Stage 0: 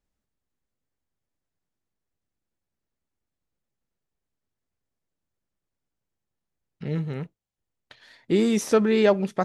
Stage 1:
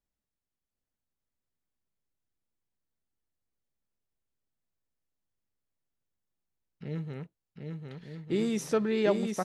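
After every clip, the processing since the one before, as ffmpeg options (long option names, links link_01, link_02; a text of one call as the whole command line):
ffmpeg -i in.wav -af "aecho=1:1:750|1200|1470|1632|1729:0.631|0.398|0.251|0.158|0.1,volume=-8dB" out.wav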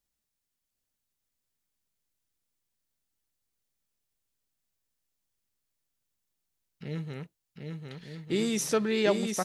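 ffmpeg -i in.wav -af "highshelf=frequency=2300:gain=10" out.wav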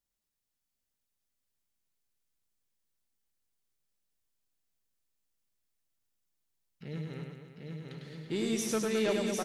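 ffmpeg -i in.wav -filter_complex "[0:a]asoftclip=type=tanh:threshold=-19dB,asplit=2[link_01][link_02];[link_02]aecho=0:1:100|215|347.2|499.3|674.2:0.631|0.398|0.251|0.158|0.1[link_03];[link_01][link_03]amix=inputs=2:normalize=0,volume=-4.5dB" out.wav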